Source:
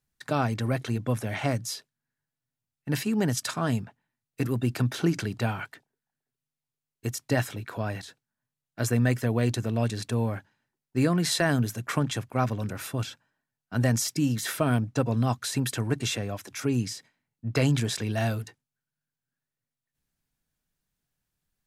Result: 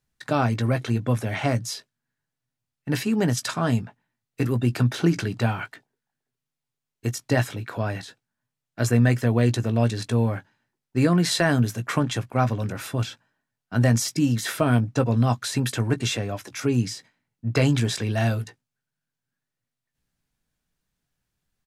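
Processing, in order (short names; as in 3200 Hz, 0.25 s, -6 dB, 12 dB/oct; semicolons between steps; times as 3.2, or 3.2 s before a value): high shelf 10000 Hz -7.5 dB; doubler 17 ms -11.5 dB; gain +3.5 dB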